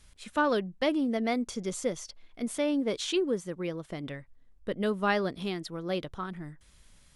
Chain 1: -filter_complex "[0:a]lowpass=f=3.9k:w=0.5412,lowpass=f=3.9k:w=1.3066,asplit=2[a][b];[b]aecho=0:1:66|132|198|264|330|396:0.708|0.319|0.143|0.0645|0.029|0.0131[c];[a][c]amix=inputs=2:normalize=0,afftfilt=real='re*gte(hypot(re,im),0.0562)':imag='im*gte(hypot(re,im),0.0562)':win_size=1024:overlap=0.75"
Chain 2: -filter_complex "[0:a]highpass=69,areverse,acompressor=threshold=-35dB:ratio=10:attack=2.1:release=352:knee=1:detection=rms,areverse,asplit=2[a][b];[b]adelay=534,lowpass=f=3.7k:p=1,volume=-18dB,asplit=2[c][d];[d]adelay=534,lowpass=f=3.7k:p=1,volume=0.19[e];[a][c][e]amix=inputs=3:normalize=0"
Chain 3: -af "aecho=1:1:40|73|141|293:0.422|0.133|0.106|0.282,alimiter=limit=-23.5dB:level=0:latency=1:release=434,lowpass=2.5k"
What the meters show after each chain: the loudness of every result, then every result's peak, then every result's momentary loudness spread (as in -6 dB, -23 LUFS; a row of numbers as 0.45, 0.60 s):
-30.0, -42.0, -35.5 LUFS; -14.0, -30.0, -23.5 dBFS; 14, 7, 10 LU